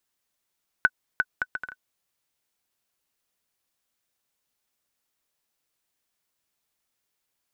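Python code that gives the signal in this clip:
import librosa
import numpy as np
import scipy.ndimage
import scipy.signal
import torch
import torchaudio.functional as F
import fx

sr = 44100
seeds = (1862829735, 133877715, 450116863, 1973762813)

y = fx.bouncing_ball(sr, first_gap_s=0.35, ratio=0.62, hz=1500.0, decay_ms=46.0, level_db=-6.0)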